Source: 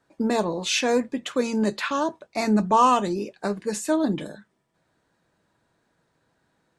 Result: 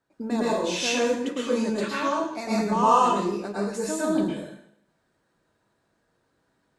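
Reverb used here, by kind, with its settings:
dense smooth reverb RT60 0.71 s, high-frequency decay 0.95×, pre-delay 95 ms, DRR −7 dB
level −9 dB

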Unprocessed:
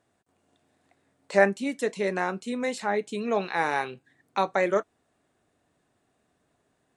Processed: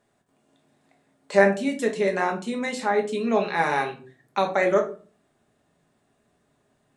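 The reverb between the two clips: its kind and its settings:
rectangular room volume 250 cubic metres, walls furnished, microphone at 1.3 metres
level +1 dB

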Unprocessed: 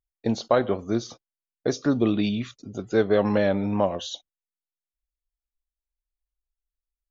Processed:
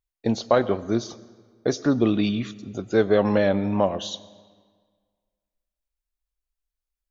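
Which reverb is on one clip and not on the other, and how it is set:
comb and all-pass reverb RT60 1.7 s, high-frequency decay 0.8×, pre-delay 55 ms, DRR 19 dB
level +1.5 dB

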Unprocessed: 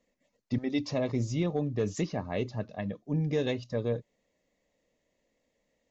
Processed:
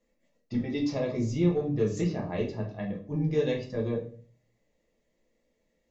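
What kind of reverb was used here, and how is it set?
rectangular room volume 38 cubic metres, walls mixed, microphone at 0.72 metres
level −4.5 dB

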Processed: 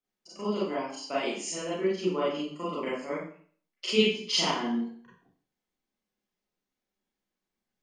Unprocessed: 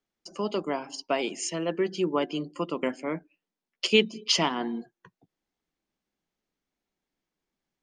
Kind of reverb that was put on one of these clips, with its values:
four-comb reverb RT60 0.49 s, combs from 30 ms, DRR −9 dB
level −11 dB

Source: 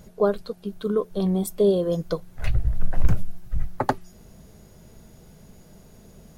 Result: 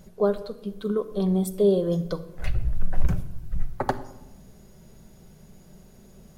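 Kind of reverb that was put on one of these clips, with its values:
rectangular room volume 3,400 cubic metres, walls furnished, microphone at 1.1 metres
level −3 dB

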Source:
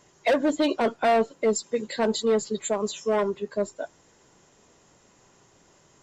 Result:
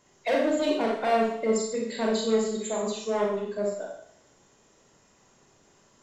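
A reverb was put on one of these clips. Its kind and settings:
four-comb reverb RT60 0.66 s, combs from 28 ms, DRR −2 dB
level −6 dB

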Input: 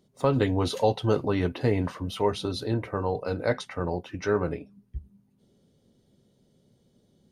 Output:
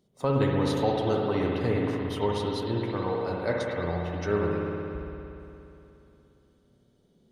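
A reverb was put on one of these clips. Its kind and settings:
spring reverb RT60 3 s, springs 58 ms, chirp 60 ms, DRR −1.5 dB
level −4 dB

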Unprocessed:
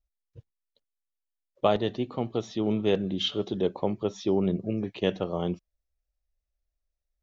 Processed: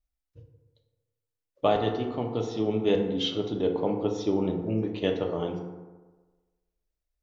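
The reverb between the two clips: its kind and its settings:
feedback delay network reverb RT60 1.3 s, low-frequency decay 0.9×, high-frequency decay 0.4×, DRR 1.5 dB
level −2 dB

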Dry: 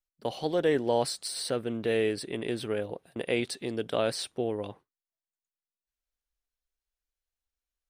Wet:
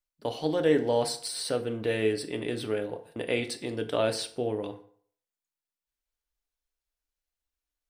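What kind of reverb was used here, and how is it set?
feedback delay network reverb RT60 0.56 s, low-frequency decay 0.85×, high-frequency decay 0.7×, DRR 6.5 dB

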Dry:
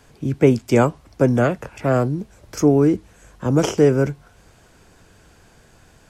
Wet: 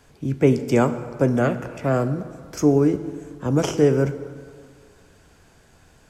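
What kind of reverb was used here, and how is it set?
dense smooth reverb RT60 1.9 s, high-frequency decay 0.6×, DRR 10 dB
level −3 dB

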